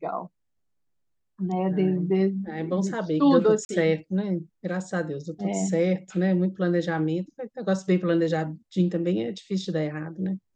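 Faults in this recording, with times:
3.65–3.69 s: dropout 41 ms

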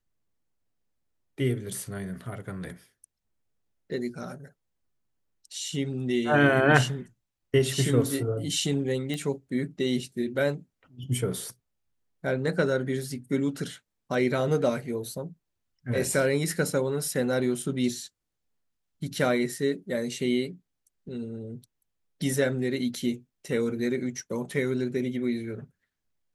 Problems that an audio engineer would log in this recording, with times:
9.14 s: pop -19 dBFS

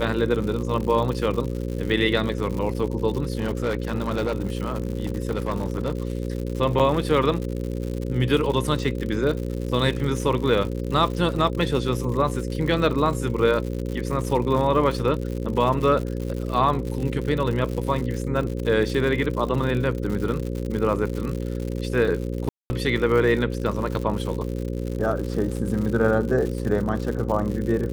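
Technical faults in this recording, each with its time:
buzz 60 Hz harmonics 9 -28 dBFS
crackle 130 per s -29 dBFS
3.38–6.12 s: clipped -19.5 dBFS
6.79–6.80 s: dropout 7.1 ms
22.49–22.70 s: dropout 210 ms

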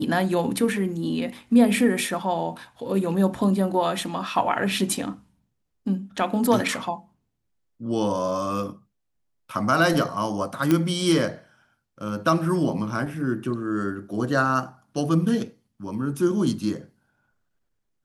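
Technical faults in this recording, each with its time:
10.71 s: pop -8 dBFS

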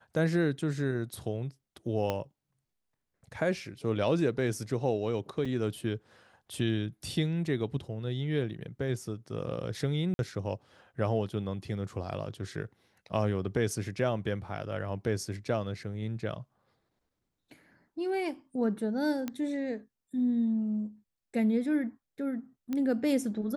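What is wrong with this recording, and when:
2.10 s: pop -17 dBFS
5.45 s: dropout 4.6 ms
10.14–10.19 s: dropout 51 ms
19.28 s: pop -20 dBFS
22.73 s: pop -21 dBFS

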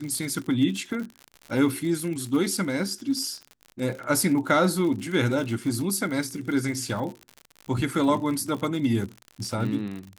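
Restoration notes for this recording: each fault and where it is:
crackle 74 per s -32 dBFS

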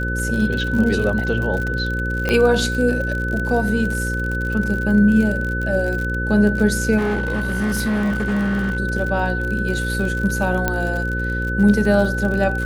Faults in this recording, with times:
buzz 60 Hz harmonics 9 -24 dBFS
crackle 50 per s -24 dBFS
whine 1.5 kHz -24 dBFS
2.29 s: pop -7 dBFS
6.97–8.77 s: clipped -17 dBFS
10.68 s: pop -5 dBFS

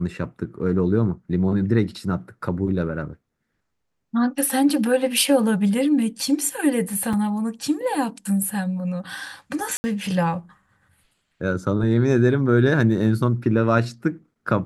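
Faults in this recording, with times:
7.13 s: dropout 4.3 ms
9.77–9.84 s: dropout 70 ms

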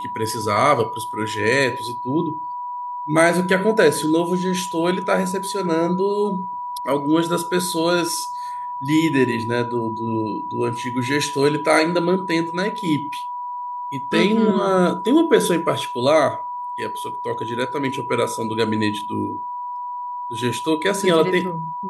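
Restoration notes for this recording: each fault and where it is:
whine 980 Hz -26 dBFS

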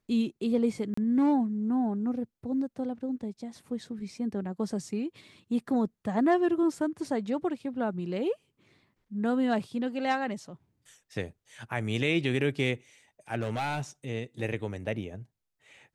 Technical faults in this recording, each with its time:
0.94–0.97 s: dropout 34 ms
13.41–13.81 s: clipped -26.5 dBFS

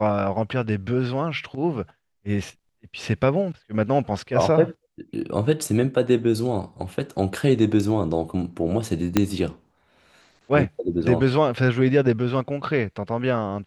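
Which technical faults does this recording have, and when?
9.17 s: pop -4 dBFS

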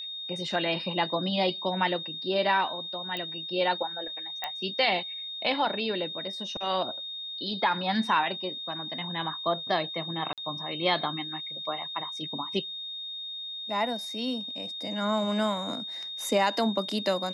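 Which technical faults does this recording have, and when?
whine 3.7 kHz -35 dBFS
3.17 s: pop -20 dBFS
4.44 s: pop -17 dBFS
10.33–10.38 s: dropout 47 ms

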